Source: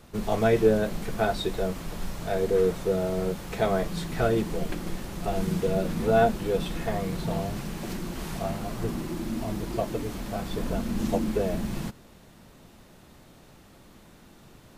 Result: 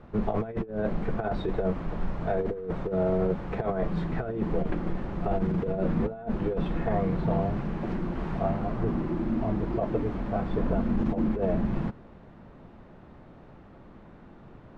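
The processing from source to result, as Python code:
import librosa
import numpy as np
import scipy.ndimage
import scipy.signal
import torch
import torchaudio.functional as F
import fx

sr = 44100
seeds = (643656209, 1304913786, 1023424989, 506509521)

y = scipy.signal.sosfilt(scipy.signal.butter(2, 1500.0, 'lowpass', fs=sr, output='sos'), x)
y = fx.over_compress(y, sr, threshold_db=-27.0, ratio=-0.5)
y = y * librosa.db_to_amplitude(1.5)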